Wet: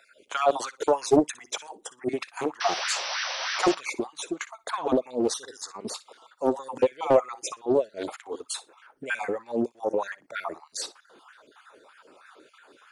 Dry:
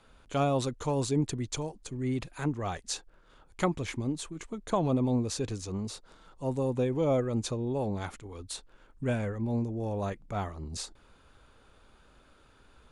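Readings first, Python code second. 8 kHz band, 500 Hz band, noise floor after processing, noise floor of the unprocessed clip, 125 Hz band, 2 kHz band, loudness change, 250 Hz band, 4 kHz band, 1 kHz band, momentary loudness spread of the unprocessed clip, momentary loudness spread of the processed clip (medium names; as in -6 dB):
+5.5 dB, +6.5 dB, -63 dBFS, -61 dBFS, -15.0 dB, +10.5 dB, +4.0 dB, +1.0 dB, +8.5 dB, +7.0 dB, 12 LU, 13 LU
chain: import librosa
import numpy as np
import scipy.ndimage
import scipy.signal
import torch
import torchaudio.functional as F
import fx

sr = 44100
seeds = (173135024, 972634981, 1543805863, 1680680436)

p1 = fx.spec_dropout(x, sr, seeds[0], share_pct=37)
p2 = fx.level_steps(p1, sr, step_db=23)
p3 = p1 + F.gain(torch.from_numpy(p2), -2.0).numpy()
p4 = fx.spec_paint(p3, sr, seeds[1], shape='noise', start_s=2.6, length_s=1.15, low_hz=510.0, high_hz=6100.0, level_db=-37.0)
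p5 = p4 + fx.room_flutter(p4, sr, wall_m=10.3, rt60_s=0.21, dry=0)
p6 = fx.filter_lfo_highpass(p5, sr, shape='sine', hz=3.2, low_hz=320.0, high_hz=1700.0, q=3.0)
p7 = fx.doppler_dist(p6, sr, depth_ms=0.57)
y = F.gain(torch.from_numpy(p7), 4.0).numpy()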